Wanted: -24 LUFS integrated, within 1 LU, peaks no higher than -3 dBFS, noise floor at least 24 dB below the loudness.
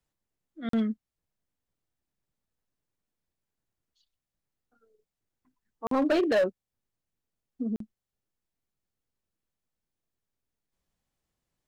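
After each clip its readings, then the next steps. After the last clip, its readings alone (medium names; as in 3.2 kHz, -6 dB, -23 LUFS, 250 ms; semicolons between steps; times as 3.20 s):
clipped samples 0.6%; clipping level -20.0 dBFS; dropouts 3; longest dropout 43 ms; loudness -29.0 LUFS; peak level -20.0 dBFS; loudness target -24.0 LUFS
-> clip repair -20 dBFS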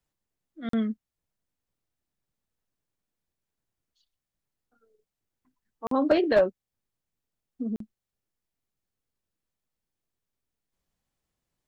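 clipped samples 0.0%; dropouts 3; longest dropout 43 ms
-> interpolate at 0.69/5.87/7.76 s, 43 ms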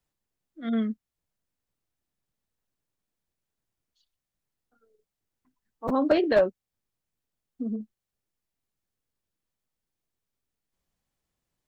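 dropouts 0; loudness -27.0 LUFS; peak level -11.0 dBFS; loudness target -24.0 LUFS
-> trim +3 dB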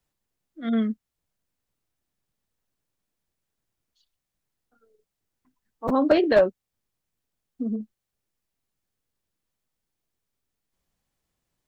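loudness -24.0 LUFS; peak level -8.0 dBFS; noise floor -84 dBFS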